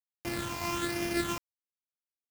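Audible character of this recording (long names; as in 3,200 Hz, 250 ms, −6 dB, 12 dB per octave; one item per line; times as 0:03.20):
a buzz of ramps at a fixed pitch in blocks of 128 samples
phaser sweep stages 8, 1.2 Hz, lowest notch 460–1,200 Hz
a quantiser's noise floor 6 bits, dither none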